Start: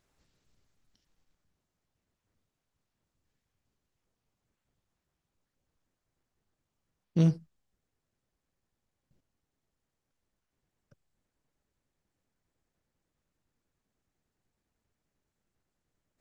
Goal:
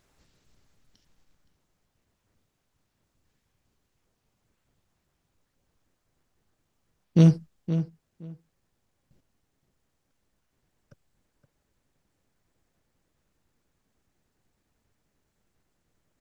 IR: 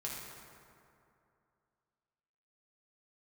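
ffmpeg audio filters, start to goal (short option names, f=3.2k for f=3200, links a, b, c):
-filter_complex "[0:a]asplit=2[a][b];[b]adelay=519,lowpass=f=2.8k:p=1,volume=-10.5dB,asplit=2[c][d];[d]adelay=519,lowpass=f=2.8k:p=1,volume=0.17[e];[a][c][e]amix=inputs=3:normalize=0,volume=7.5dB"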